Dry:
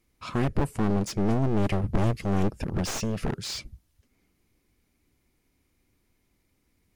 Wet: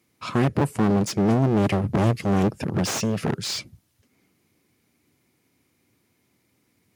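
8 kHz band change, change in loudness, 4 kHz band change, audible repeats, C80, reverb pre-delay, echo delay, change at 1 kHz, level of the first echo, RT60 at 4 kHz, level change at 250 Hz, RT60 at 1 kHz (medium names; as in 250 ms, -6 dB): +5.5 dB, +5.0 dB, +5.5 dB, no echo, no reverb, no reverb, no echo, +5.5 dB, no echo, no reverb, +5.5 dB, no reverb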